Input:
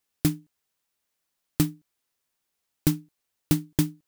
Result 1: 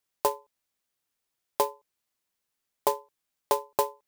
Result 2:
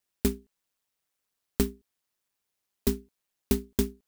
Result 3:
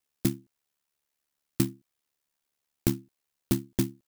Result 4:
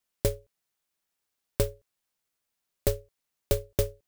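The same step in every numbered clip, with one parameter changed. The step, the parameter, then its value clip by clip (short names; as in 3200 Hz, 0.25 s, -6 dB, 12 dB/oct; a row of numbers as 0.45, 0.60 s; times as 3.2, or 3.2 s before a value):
ring modulator, frequency: 720, 99, 36, 260 Hz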